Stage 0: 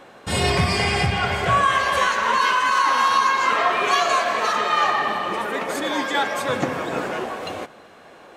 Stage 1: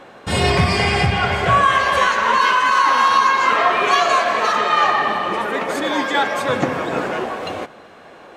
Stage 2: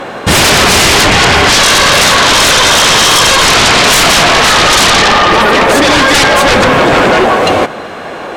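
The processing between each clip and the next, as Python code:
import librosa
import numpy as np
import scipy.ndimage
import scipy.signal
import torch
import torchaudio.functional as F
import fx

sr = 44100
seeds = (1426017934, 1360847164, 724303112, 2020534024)

y1 = fx.high_shelf(x, sr, hz=6500.0, db=-7.5)
y1 = y1 * librosa.db_to_amplitude(4.0)
y2 = fx.fold_sine(y1, sr, drive_db=16, ceiling_db=-3.5)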